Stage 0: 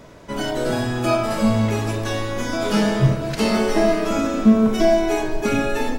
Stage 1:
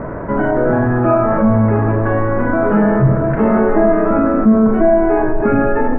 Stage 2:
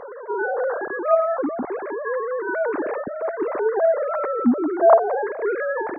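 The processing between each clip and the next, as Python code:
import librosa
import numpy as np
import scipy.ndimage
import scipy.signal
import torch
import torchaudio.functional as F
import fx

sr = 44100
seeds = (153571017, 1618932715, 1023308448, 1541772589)

y1 = scipy.signal.sosfilt(scipy.signal.butter(6, 1700.0, 'lowpass', fs=sr, output='sos'), x)
y1 = fx.env_flatten(y1, sr, amount_pct=50)
y1 = y1 * 10.0 ** (1.5 / 20.0)
y2 = fx.sine_speech(y1, sr)
y2 = y2 * 10.0 ** (-9.0 / 20.0)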